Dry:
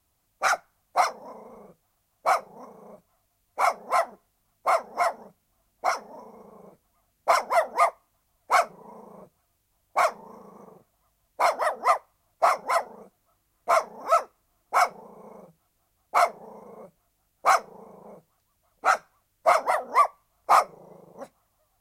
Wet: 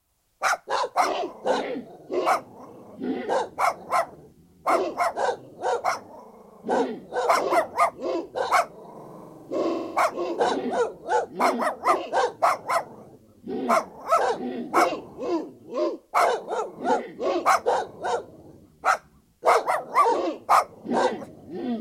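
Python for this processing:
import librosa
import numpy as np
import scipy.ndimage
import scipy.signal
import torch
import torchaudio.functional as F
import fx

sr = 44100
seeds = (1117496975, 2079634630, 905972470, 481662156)

y = fx.echo_pitch(x, sr, ms=89, semitones=-6, count=3, db_per_echo=-3.0)
y = fx.room_flutter(y, sr, wall_m=7.6, rt60_s=1.1, at=(8.91, 10.03))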